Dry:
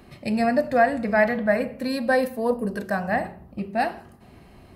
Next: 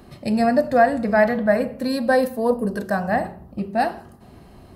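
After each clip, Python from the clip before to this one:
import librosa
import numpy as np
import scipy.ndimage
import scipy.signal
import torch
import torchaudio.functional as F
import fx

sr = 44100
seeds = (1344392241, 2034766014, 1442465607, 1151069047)

y = fx.peak_eq(x, sr, hz=2300.0, db=-7.0, octaves=0.72)
y = y * 10.0 ** (3.5 / 20.0)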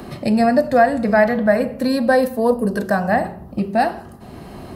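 y = fx.band_squash(x, sr, depth_pct=40)
y = y * 10.0 ** (3.0 / 20.0)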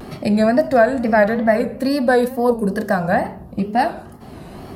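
y = fx.wow_flutter(x, sr, seeds[0], rate_hz=2.1, depth_cents=110.0)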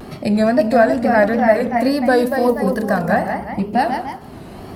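y = fx.echo_pitch(x, sr, ms=353, semitones=1, count=2, db_per_echo=-6.0)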